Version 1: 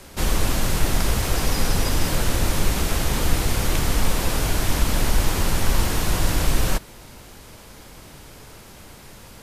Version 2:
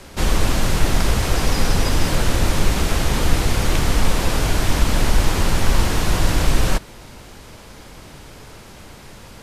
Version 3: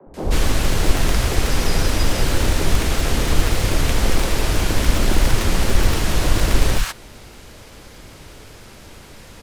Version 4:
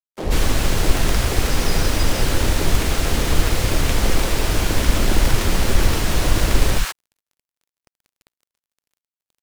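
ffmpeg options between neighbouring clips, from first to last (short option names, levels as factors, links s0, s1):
-af "highshelf=f=11000:g=-11.5,volume=1.5"
-filter_complex "[0:a]acrossover=split=220|710|2400[s0][s1][s2][s3];[s0]acrusher=bits=2:mode=log:mix=0:aa=0.000001[s4];[s4][s1][s2][s3]amix=inputs=4:normalize=0,acrossover=split=170|930[s5][s6][s7];[s5]adelay=60[s8];[s7]adelay=140[s9];[s8][s6][s9]amix=inputs=3:normalize=0"
-filter_complex "[0:a]acrossover=split=260|6300[s0][s1][s2];[s0]aeval=exprs='sgn(val(0))*max(abs(val(0))-0.0119,0)':c=same[s3];[s3][s1][s2]amix=inputs=3:normalize=0,acrusher=bits=4:mix=0:aa=0.5"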